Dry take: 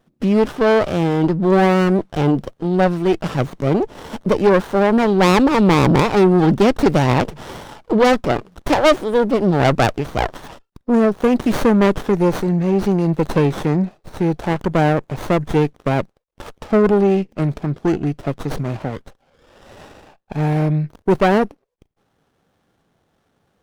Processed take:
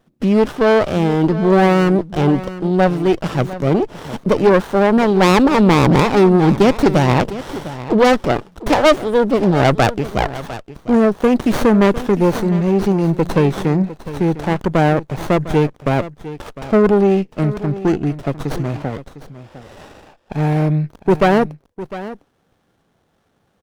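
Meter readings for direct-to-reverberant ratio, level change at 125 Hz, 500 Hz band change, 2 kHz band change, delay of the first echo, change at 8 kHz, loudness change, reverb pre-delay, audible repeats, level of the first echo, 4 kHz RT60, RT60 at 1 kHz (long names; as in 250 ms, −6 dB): no reverb audible, +1.5 dB, +1.5 dB, +1.5 dB, 704 ms, +1.5 dB, +1.5 dB, no reverb audible, 1, −15.0 dB, no reverb audible, no reverb audible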